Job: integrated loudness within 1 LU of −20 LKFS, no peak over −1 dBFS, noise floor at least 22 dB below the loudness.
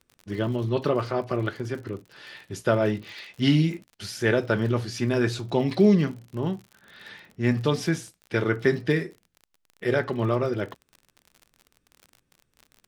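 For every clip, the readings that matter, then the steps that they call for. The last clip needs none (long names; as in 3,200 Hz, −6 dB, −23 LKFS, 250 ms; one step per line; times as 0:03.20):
crackle rate 48 per second; integrated loudness −25.5 LKFS; sample peak −7.5 dBFS; target loudness −20.0 LKFS
→ click removal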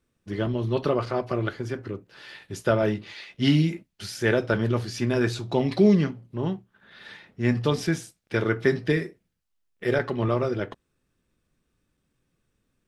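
crackle rate 0 per second; integrated loudness −25.5 LKFS; sample peak −7.5 dBFS; target loudness −20.0 LKFS
→ level +5.5 dB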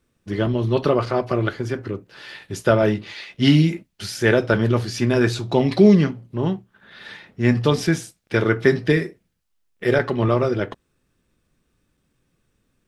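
integrated loudness −20.0 LKFS; sample peak −2.0 dBFS; background noise floor −70 dBFS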